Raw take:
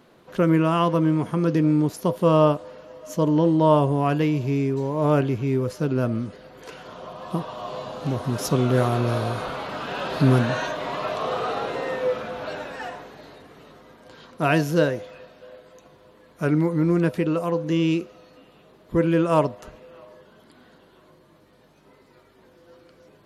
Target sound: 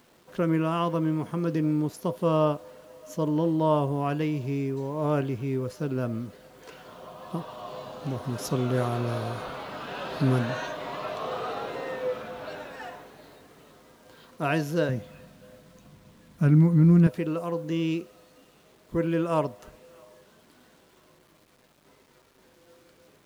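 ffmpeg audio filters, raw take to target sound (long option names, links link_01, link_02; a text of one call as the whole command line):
ffmpeg -i in.wav -filter_complex "[0:a]acrusher=bits=8:mix=0:aa=0.000001,asettb=1/sr,asplit=3[link_01][link_02][link_03];[link_01]atrim=end=14.894[link_04];[link_02]atrim=start=14.89:end=17.07,asetpts=PTS-STARTPTS,afade=type=in:duration=0.004:curve=qsin,afade=type=out:start_time=2.176:duration=0.004:curve=qsin,lowshelf=frequency=280:width_type=q:width=1.5:gain=10[link_05];[link_03]atrim=start=17.066[link_06];[link_04][link_05]acrossfade=duration=0.004:curve1=hsin:curve2=qsin[link_07];[link_07][link_06]acrossfade=duration=0.004:curve1=qsin:curve2=hsin,volume=-6dB" out.wav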